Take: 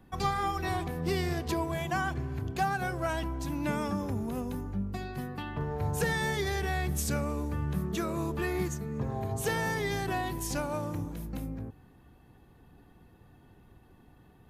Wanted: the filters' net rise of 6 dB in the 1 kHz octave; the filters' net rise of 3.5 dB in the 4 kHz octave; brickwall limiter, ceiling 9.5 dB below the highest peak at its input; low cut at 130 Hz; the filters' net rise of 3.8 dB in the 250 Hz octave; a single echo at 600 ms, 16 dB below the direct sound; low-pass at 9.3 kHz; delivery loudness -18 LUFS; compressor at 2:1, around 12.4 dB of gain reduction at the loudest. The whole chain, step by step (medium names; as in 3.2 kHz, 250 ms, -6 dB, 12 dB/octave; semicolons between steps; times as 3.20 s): high-pass 130 Hz; low-pass 9.3 kHz; peaking EQ 250 Hz +5.5 dB; peaking EQ 1 kHz +7.5 dB; peaking EQ 4 kHz +4 dB; compression 2:1, threshold -43 dBFS; peak limiter -34.5 dBFS; delay 600 ms -16 dB; trim +24.5 dB